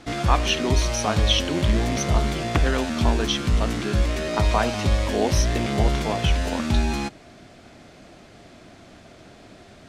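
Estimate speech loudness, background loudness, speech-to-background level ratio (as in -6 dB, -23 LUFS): -27.5 LUFS, -24.5 LUFS, -3.0 dB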